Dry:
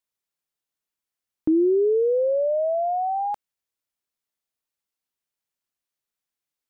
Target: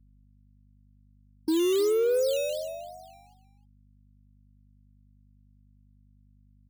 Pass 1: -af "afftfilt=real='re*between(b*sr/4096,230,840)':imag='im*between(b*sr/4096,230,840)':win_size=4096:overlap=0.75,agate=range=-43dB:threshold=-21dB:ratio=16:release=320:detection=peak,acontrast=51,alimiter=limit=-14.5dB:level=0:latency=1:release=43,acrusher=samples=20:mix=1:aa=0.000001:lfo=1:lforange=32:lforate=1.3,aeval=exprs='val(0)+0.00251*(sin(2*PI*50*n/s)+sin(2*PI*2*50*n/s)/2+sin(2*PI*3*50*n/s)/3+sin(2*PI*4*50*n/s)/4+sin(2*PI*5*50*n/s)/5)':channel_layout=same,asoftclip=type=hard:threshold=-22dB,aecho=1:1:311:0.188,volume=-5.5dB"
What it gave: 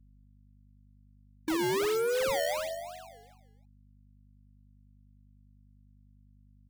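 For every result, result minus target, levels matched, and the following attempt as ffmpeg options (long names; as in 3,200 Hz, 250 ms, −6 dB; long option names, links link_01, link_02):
hard clipping: distortion +13 dB; sample-and-hold swept by an LFO: distortion +10 dB
-af "afftfilt=real='re*between(b*sr/4096,230,840)':imag='im*between(b*sr/4096,230,840)':win_size=4096:overlap=0.75,agate=range=-43dB:threshold=-21dB:ratio=16:release=320:detection=peak,acontrast=51,alimiter=limit=-14.5dB:level=0:latency=1:release=43,acrusher=samples=20:mix=1:aa=0.000001:lfo=1:lforange=32:lforate=1.3,aeval=exprs='val(0)+0.00251*(sin(2*PI*50*n/s)+sin(2*PI*2*50*n/s)/2+sin(2*PI*3*50*n/s)/3+sin(2*PI*4*50*n/s)/4+sin(2*PI*5*50*n/s)/5)':channel_layout=same,asoftclip=type=hard:threshold=-16dB,aecho=1:1:311:0.188,volume=-5.5dB"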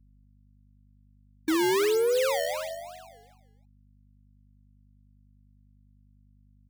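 sample-and-hold swept by an LFO: distortion +10 dB
-af "afftfilt=real='re*between(b*sr/4096,230,840)':imag='im*between(b*sr/4096,230,840)':win_size=4096:overlap=0.75,agate=range=-43dB:threshold=-21dB:ratio=16:release=320:detection=peak,acontrast=51,alimiter=limit=-14.5dB:level=0:latency=1:release=43,acrusher=samples=8:mix=1:aa=0.000001:lfo=1:lforange=12.8:lforate=1.3,aeval=exprs='val(0)+0.00251*(sin(2*PI*50*n/s)+sin(2*PI*2*50*n/s)/2+sin(2*PI*3*50*n/s)/3+sin(2*PI*4*50*n/s)/4+sin(2*PI*5*50*n/s)/5)':channel_layout=same,asoftclip=type=hard:threshold=-16dB,aecho=1:1:311:0.188,volume=-5.5dB"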